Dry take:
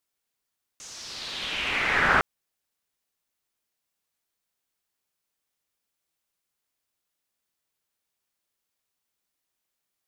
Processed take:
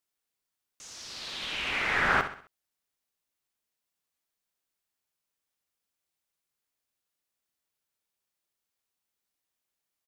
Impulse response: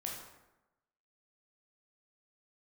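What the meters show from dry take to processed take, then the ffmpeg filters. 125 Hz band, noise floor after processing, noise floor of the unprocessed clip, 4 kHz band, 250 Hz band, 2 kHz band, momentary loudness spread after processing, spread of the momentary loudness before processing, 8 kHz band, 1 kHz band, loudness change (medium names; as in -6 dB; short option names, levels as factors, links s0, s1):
-3.5 dB, under -85 dBFS, -83 dBFS, -3.5 dB, -3.5 dB, -3.5 dB, 17 LU, 17 LU, -3.5 dB, -3.5 dB, -3.5 dB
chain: -af "aecho=1:1:65|130|195|260:0.299|0.122|0.0502|0.0206,volume=0.631"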